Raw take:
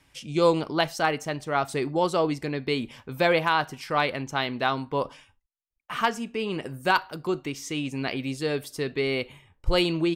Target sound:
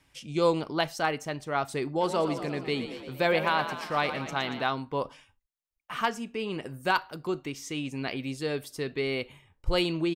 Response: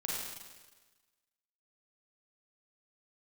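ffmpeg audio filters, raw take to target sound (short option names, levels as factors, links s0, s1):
-filter_complex "[0:a]asplit=3[s0][s1][s2];[s0]afade=t=out:st=2:d=0.02[s3];[s1]asplit=9[s4][s5][s6][s7][s8][s9][s10][s11][s12];[s5]adelay=116,afreqshift=32,volume=0.316[s13];[s6]adelay=232,afreqshift=64,volume=0.195[s14];[s7]adelay=348,afreqshift=96,volume=0.122[s15];[s8]adelay=464,afreqshift=128,volume=0.075[s16];[s9]adelay=580,afreqshift=160,volume=0.0468[s17];[s10]adelay=696,afreqshift=192,volume=0.0288[s18];[s11]adelay=812,afreqshift=224,volume=0.018[s19];[s12]adelay=928,afreqshift=256,volume=0.0111[s20];[s4][s13][s14][s15][s16][s17][s18][s19][s20]amix=inputs=9:normalize=0,afade=t=in:st=2:d=0.02,afade=t=out:st=4.62:d=0.02[s21];[s2]afade=t=in:st=4.62:d=0.02[s22];[s3][s21][s22]amix=inputs=3:normalize=0,volume=0.668"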